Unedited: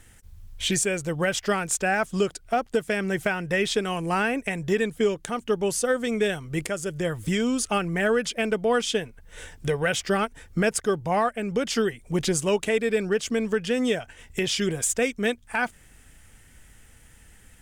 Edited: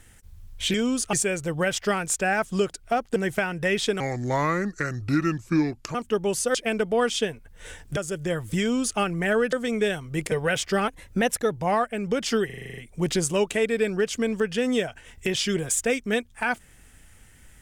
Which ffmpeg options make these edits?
-filter_complex "[0:a]asplit=20[a][b][c][d][e][f][g][h][i][j][k][l][m][n][o][p][q][r][s][t];[a]atrim=end=0.742[u];[b]atrim=start=7.348:end=7.742[v];[c]atrim=start=0.738:end=2.772[w];[d]atrim=start=3.038:end=3.884[x];[e]atrim=start=3.88:end=5.32,asetpts=PTS-STARTPTS,asetrate=32634,aresample=44100,atrim=end_sample=85816,asetpts=PTS-STARTPTS[y];[f]atrim=start=5.316:end=5.922[z];[g]atrim=start=8.268:end=9.692[aa];[h]atrim=start=6.708:end=8.272[ab];[i]atrim=start=5.918:end=6.712[ac];[j]atrim=start=9.688:end=10.254[ad];[k]atrim=start=10.25:end=10.96,asetpts=PTS-STARTPTS,asetrate=48951,aresample=44100,atrim=end_sample=28208,asetpts=PTS-STARTPTS[ae];[l]atrim=start=10.956:end=11.942[af];[m]atrim=start=11.898:end=11.942[ag];[n]atrim=start=11.898:end=11.942[ah];[o]atrim=start=11.898:end=11.942[ai];[p]atrim=start=11.898:end=11.942[aj];[q]atrim=start=11.898:end=11.942[ak];[r]atrim=start=11.898:end=11.942[al];[s]atrim=start=11.898:end=11.942[am];[t]atrim=start=11.898[an];[u][v]acrossfade=d=0.004:c1=hsin:c2=hsin[ao];[ao][w]acrossfade=d=0.004:c1=hsin:c2=hsin[ap];[ap][x]acrossfade=d=0.004:c1=hsin:c2=hsin[aq];[aq][y]acrossfade=d=0.004:c1=hsin:c2=hsin[ar];[ar][z]acrossfade=d=0.004:c1=hsin:c2=hsin[as];[as][aa]acrossfade=d=0.004:c1=hsin:c2=hsin[at];[at][ab]acrossfade=d=0.004:c1=hsin:c2=hsin[au];[au][ac]acrossfade=d=0.004:c1=hsin:c2=hsin[av];[av][ad]acrossfade=d=0.004:c1=hsin:c2=hsin[aw];[aw][ae]acrossfade=d=0.004:c1=hsin:c2=hsin[ax];[ax][af]acrossfade=d=0.004:c1=hsin:c2=hsin[ay];[ay][ag]acrossfade=d=0.004:c1=hsin:c2=hsin[az];[az][ah]acrossfade=d=0.004:c1=hsin:c2=hsin[ba];[ba][ai]acrossfade=d=0.004:c1=hsin:c2=hsin[bb];[bb][aj]acrossfade=d=0.004:c1=hsin:c2=hsin[bc];[bc][ak]acrossfade=d=0.004:c1=hsin:c2=hsin[bd];[bd][al]acrossfade=d=0.004:c1=hsin:c2=hsin[be];[be][am]acrossfade=d=0.004:c1=hsin:c2=hsin[bf];[bf][an]acrossfade=d=0.004:c1=hsin:c2=hsin"

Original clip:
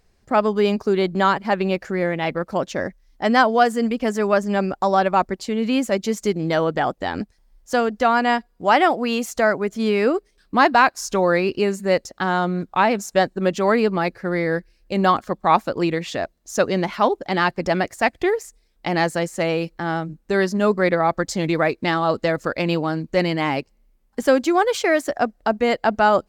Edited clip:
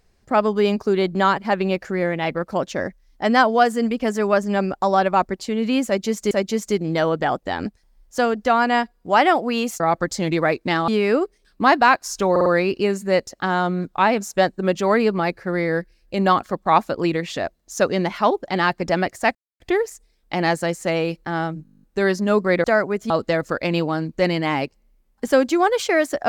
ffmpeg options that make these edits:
-filter_complex "[0:a]asplit=20[a][b][c][d][e][f][g][h][i][j][k][l][m][n][o][p][q][r][s][t];[a]atrim=end=6.312[u];[b]atrim=start=5.858:end=9.352[v];[c]atrim=start=20.968:end=22.052[w];[d]atrim=start=9.808:end=11.292[x];[e]atrim=start=11.238:end=11.292[y];[f]atrim=start=11.238:end=11.292[z];[g]atrim=start=11.238:end=18.13,asetpts=PTS-STARTPTS,afade=t=out:st=6.888:d=0.004:c=hsin,apad=pad_dur=0.25[aa];[h]atrim=start=18.13:end=20.182,asetpts=PTS-STARTPTS,afade=t=in:d=0.004:c=hsin[ab];[i]atrim=start=20.158:end=20.182[ac];[j]atrim=start=20.158:end=20.182[ad];[k]atrim=start=20.158:end=20.182[ae];[l]atrim=start=20.158:end=20.182[af];[m]atrim=start=20.158:end=20.182[ag];[n]atrim=start=20.158:end=20.182[ah];[o]atrim=start=20.158:end=20.182[ai];[p]atrim=start=20.158:end=20.182[aj];[q]atrim=start=20.158:end=20.182[ak];[r]atrim=start=20.158:end=20.972[al];[s]atrim=start=9.348:end=9.812[am];[t]atrim=start=22.048[an];[u][v]acrossfade=d=0.004:c1=hsin:c2=hsin[ao];[ao][w]acrossfade=d=0.004:c1=hsin:c2=hsin[ap];[ap][x]acrossfade=d=0.004:c1=hsin:c2=hsin[aq];[aq][y]acrossfade=d=0.004:c1=hsin:c2=hsin[ar];[ar][z]acrossfade=d=0.004:c1=hsin:c2=hsin[as];[aa][ab]concat=n=2:v=0:a=1[at];[as][at]acrossfade=d=0.004:c1=hsin:c2=hsin[au];[au][ac]acrossfade=d=0.004:c1=hsin:c2=hsin[av];[av][ad]acrossfade=d=0.004:c1=hsin:c2=hsin[aw];[aw][ae]acrossfade=d=0.004:c1=hsin:c2=hsin[ax];[ax][af]acrossfade=d=0.004:c1=hsin:c2=hsin[ay];[ay][ag]acrossfade=d=0.004:c1=hsin:c2=hsin[az];[az][ah]acrossfade=d=0.004:c1=hsin:c2=hsin[ba];[ba][ai]acrossfade=d=0.004:c1=hsin:c2=hsin[bb];[bb][aj]acrossfade=d=0.004:c1=hsin:c2=hsin[bc];[bc][ak]acrossfade=d=0.004:c1=hsin:c2=hsin[bd];[bd][al]acrossfade=d=0.004:c1=hsin:c2=hsin[be];[be][am]acrossfade=d=0.004:c1=hsin:c2=hsin[bf];[bf][an]acrossfade=d=0.004:c1=hsin:c2=hsin"

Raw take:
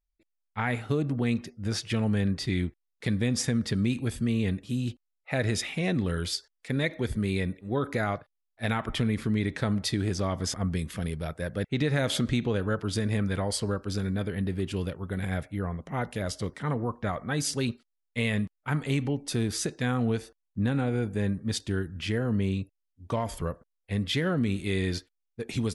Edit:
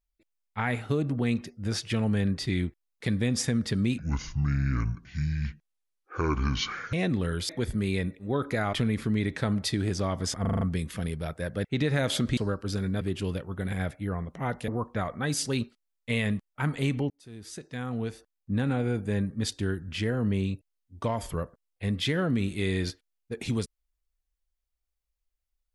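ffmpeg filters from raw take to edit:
-filter_complex "[0:a]asplit=14[a][b][c][d][e][f][g][h][i][j][k][l][m][n];[a]atrim=end=3.984[o];[b]atrim=start=3.98:end=5.78,asetpts=PTS-STARTPTS,asetrate=26901,aresample=44100,atrim=end_sample=130131,asetpts=PTS-STARTPTS[p];[c]atrim=start=5.776:end=6.342[q];[d]atrim=start=6.908:end=8.152[r];[e]atrim=start=8.928:end=10.652[s];[f]atrim=start=10.608:end=10.652[t];[g]atrim=start=10.608:end=10.652[u];[h]atrim=start=10.608:end=10.652[v];[i]atrim=start=10.608:end=10.652[w];[j]atrim=start=10.608:end=12.372[x];[k]atrim=start=13.588:end=14.232[y];[l]atrim=start=14.528:end=16.202[z];[m]atrim=start=16.758:end=19.18,asetpts=PTS-STARTPTS,afade=t=out:st=2.418:d=0.004:c=hsin[aa];[n]atrim=start=19.18,asetpts=PTS-STARTPTS,afade=t=in:d=1.61[ab];[o][p]acrossfade=d=0.004:c1=hsin:c2=hsin[ac];[ac][q]acrossfade=d=0.004:c1=hsin:c2=hsin[ad];[ad][r]acrossfade=d=0.004:c1=hsin:c2=hsin[ae];[ae][s]acrossfade=d=0.004:c1=hsin:c2=hsin[af];[af][t]acrossfade=d=0.004:c1=hsin:c2=hsin[ag];[ag][u]acrossfade=d=0.004:c1=hsin:c2=hsin[ah];[ah][v]acrossfade=d=0.004:c1=hsin:c2=hsin[ai];[ai][w]acrossfade=d=0.004:c1=hsin:c2=hsin[aj];[aj][x]acrossfade=d=0.004:c1=hsin:c2=hsin[ak];[ak][y]acrossfade=d=0.004:c1=hsin:c2=hsin[al];[al][z]acrossfade=d=0.004:c1=hsin:c2=hsin[am];[aa][ab]concat=n=2:v=0:a=1[an];[am][an]acrossfade=d=0.004:c1=hsin:c2=hsin"

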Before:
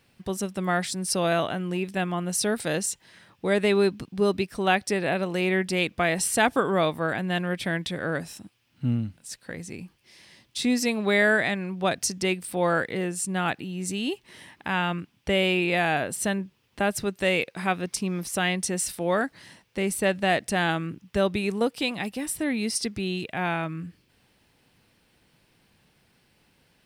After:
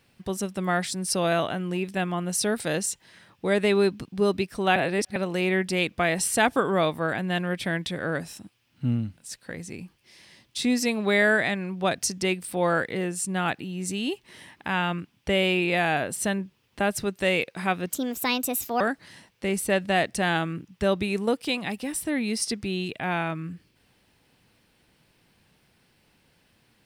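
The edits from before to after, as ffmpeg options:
-filter_complex "[0:a]asplit=5[a][b][c][d][e];[a]atrim=end=4.762[f];[b]atrim=start=4.758:end=5.162,asetpts=PTS-STARTPTS,areverse[g];[c]atrim=start=5.158:end=17.904[h];[d]atrim=start=17.9:end=19.14,asetpts=PTS-STARTPTS,asetrate=60417,aresample=44100,atrim=end_sample=39915,asetpts=PTS-STARTPTS[i];[e]atrim=start=19.136[j];[f][g]acrossfade=d=0.004:c1=hsin:c2=hsin[k];[k][h]acrossfade=d=0.004:c1=hsin:c2=hsin[l];[l][i]acrossfade=d=0.004:c1=hsin:c2=hsin[m];[m][j]acrossfade=d=0.004:c1=hsin:c2=hsin"

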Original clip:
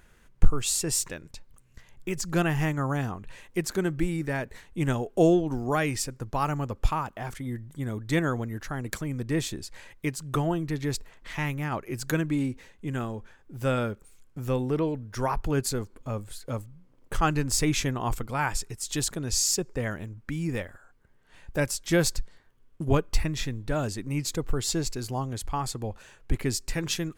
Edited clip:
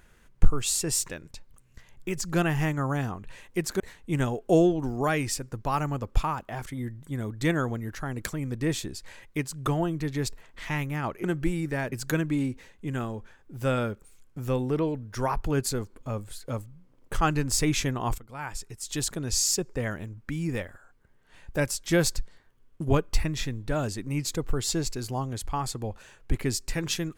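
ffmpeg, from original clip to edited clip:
-filter_complex "[0:a]asplit=5[a][b][c][d][e];[a]atrim=end=3.802[f];[b]atrim=start=4.478:end=11.922[g];[c]atrim=start=3.798:end=4.482[h];[d]atrim=start=11.918:end=18.18,asetpts=PTS-STARTPTS,afade=t=out:st=6.258:d=0.004:c=hsin:silence=0.141254[i];[e]atrim=start=18.18,asetpts=PTS-STARTPTS,afade=t=in:d=0.98:silence=0.141254[j];[f][g]acrossfade=d=0.004:c1=hsin:c2=hsin[k];[k][h]acrossfade=d=0.004:c1=hsin:c2=hsin[l];[i][j]concat=n=2:v=0:a=1[m];[l][m]acrossfade=d=0.004:c1=hsin:c2=hsin"

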